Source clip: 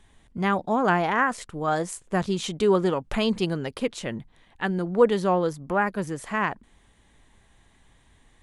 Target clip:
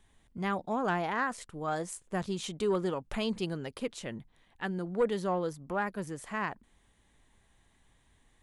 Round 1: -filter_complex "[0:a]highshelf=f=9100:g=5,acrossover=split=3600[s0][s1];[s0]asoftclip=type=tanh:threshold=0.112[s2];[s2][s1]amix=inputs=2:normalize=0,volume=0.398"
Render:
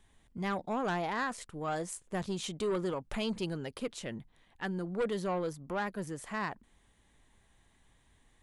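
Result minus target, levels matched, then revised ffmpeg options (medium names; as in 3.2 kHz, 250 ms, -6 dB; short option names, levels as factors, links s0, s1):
saturation: distortion +10 dB
-filter_complex "[0:a]highshelf=f=9100:g=5,acrossover=split=3600[s0][s1];[s0]asoftclip=type=tanh:threshold=0.299[s2];[s2][s1]amix=inputs=2:normalize=0,volume=0.398"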